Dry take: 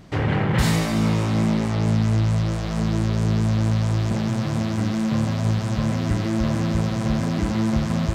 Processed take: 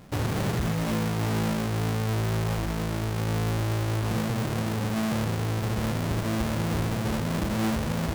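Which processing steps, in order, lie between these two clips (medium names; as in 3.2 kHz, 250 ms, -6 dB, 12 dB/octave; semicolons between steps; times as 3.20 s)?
square wave that keeps the level; hum notches 50/100/150 Hz; peak limiter -14.5 dBFS, peak gain reduction 7.5 dB; sliding maximum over 9 samples; trim -7 dB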